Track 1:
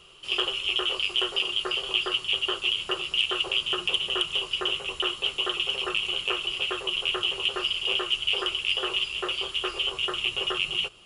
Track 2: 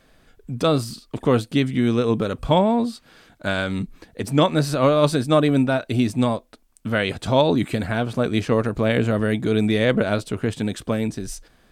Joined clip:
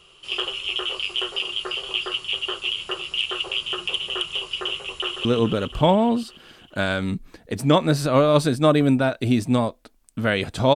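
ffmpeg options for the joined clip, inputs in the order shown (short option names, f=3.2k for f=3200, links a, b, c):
-filter_complex "[0:a]apad=whole_dur=10.75,atrim=end=10.75,atrim=end=5.252[a];[1:a]atrim=start=1.928:end=7.43[b];[a][b]acrossfade=d=0.004:c1=hsin:c2=hsin,asplit=2[c][d];[d]afade=t=in:st=4.99:d=0.01,afade=t=out:st=5.25:d=0.01,aecho=0:1:140|280|420|560|700|840|980|1120|1260|1400|1540|1680:0.398107|0.318486|0.254789|0.203831|0.163065|0.130452|0.104361|0.0834891|0.0667913|0.053433|0.0427464|0.0341971[e];[c][e]amix=inputs=2:normalize=0"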